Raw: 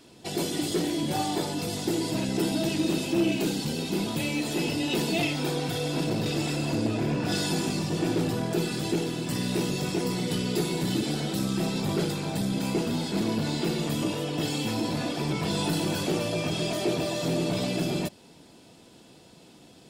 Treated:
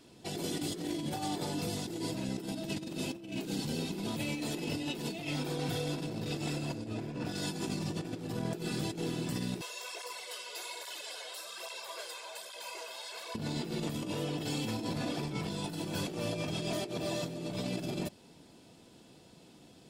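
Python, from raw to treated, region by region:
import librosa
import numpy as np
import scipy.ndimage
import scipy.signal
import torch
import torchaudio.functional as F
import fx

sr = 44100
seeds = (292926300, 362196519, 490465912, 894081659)

y = fx.chain(x, sr, fx.highpass(hz=660.0, slope=24),
    fx.comb(ms=1.9, depth=0.63),
    fx.flanger_cancel(hz=1.2, depth_ms=7.3), at=(9.61, 13.35))
y = fx.low_shelf(y, sr, hz=320.0, db=2.5)
y = fx.over_compress(y, sr, threshold_db=-28.0, ratio=-0.5)
y = y * 10.0 ** (-7.5 / 20.0)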